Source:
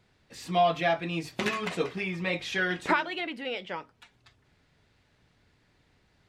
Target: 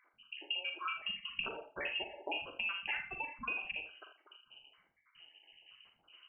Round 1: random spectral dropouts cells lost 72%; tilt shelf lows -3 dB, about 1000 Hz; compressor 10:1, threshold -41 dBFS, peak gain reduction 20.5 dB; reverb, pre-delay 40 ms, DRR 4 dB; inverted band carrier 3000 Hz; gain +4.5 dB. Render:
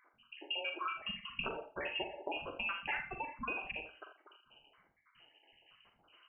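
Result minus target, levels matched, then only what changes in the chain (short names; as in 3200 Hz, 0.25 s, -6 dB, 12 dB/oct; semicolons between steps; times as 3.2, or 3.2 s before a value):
1000 Hz band +3.5 dB
change: tilt shelf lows +3.5 dB, about 1000 Hz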